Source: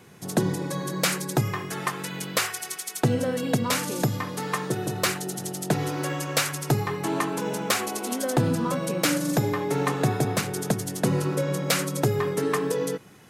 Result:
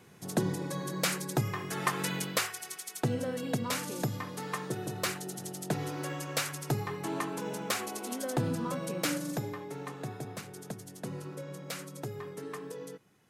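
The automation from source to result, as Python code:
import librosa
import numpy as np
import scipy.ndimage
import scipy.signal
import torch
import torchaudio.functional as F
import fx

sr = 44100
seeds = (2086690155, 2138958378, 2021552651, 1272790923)

y = fx.gain(x, sr, db=fx.line((1.55, -6.0), (2.09, 1.0), (2.51, -8.0), (9.11, -8.0), (9.78, -16.0)))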